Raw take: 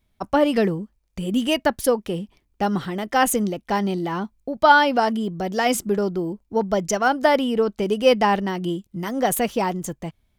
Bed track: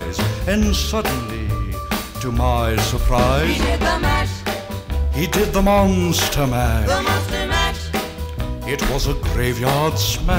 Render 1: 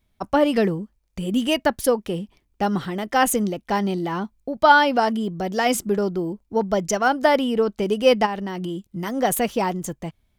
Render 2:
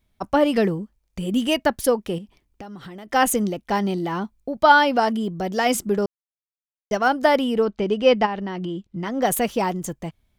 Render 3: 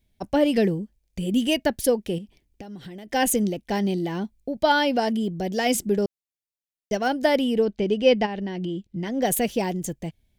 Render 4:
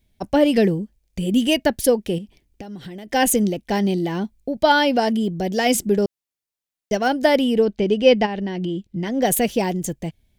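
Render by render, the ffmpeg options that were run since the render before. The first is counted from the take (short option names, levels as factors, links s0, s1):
-filter_complex "[0:a]asplit=3[s0][s1][s2];[s0]afade=t=out:st=8.25:d=0.02[s3];[s1]acompressor=threshold=0.0631:ratio=6:attack=3.2:release=140:knee=1:detection=peak,afade=t=in:st=8.25:d=0.02,afade=t=out:st=8.85:d=0.02[s4];[s2]afade=t=in:st=8.85:d=0.02[s5];[s3][s4][s5]amix=inputs=3:normalize=0"
-filter_complex "[0:a]asettb=1/sr,asplit=3[s0][s1][s2];[s0]atrim=end=2.184[s3];[s1]atrim=start=2.18:end=3.13,asetpts=PTS-STARTPTS,afade=t=in:d=0.004:c=qsin,afade=t=out:st=0.946:d=0.004:c=qsin,acompressor=threshold=0.02:ratio=12:attack=3.2:release=140:knee=1:detection=peak[s4];[s2]atrim=start=3.126[s5];[s3][s4]acrossfade=d=0.004:c1=hsin:c2=qsin[s6];[s6][s5]acrossfade=d=0.004:c1=qsin:c2=hsin,asettb=1/sr,asplit=3[s7][s8][s9];[s7]atrim=end=7.654[s10];[s8]atrim=start=7.65:end=9.22,asetpts=PTS-STARTPTS,afade=t=in:d=0.004:c=qsin,afade=t=out:st=1.566:d=0.004:c=qsin,lowpass=4300[s11];[s9]atrim=start=9.216[s12];[s10][s11]acrossfade=d=0.004:c1=hsin:c2=qsin[s13];[s13][s12]acrossfade=d=0.004:c1=qsin:c2=hsin,asplit=3[s14][s15][s16];[s14]atrim=end=6.06,asetpts=PTS-STARTPTS,afade=t=out:st=6.056:d=0.004:c=hsin[s17];[s15]atrim=start=6.06:end=6.91,asetpts=PTS-STARTPTS,volume=0[s18];[s16]atrim=start=6.91,asetpts=PTS-STARTPTS,afade=t=in:d=0.004:c=hsin[s19];[s17][s18][s19]concat=n=3:v=0:a=1"
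-af "equalizer=f=1100:w=1.6:g=-11.5,bandreject=f=1300:w=7.4"
-af "volume=1.58"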